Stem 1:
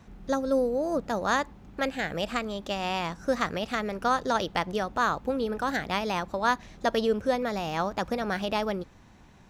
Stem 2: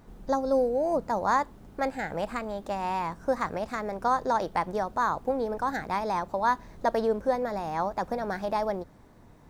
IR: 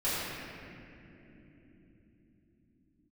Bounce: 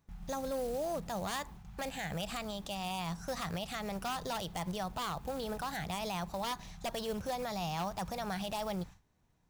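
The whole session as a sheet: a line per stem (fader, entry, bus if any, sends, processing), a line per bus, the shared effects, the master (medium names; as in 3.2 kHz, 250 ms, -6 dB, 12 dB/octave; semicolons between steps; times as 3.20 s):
-2.5 dB, 0.00 s, no send, elliptic band-stop 180–750 Hz; gate with hold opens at -42 dBFS; tone controls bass +4 dB, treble +3 dB
-8.0 dB, 0.00 s, polarity flipped, no send, short-mantissa float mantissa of 2-bit; gate -42 dBFS, range -15 dB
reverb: none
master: wavefolder -24 dBFS; treble shelf 6.3 kHz +5 dB; peak limiter -28.5 dBFS, peak gain reduction 7.5 dB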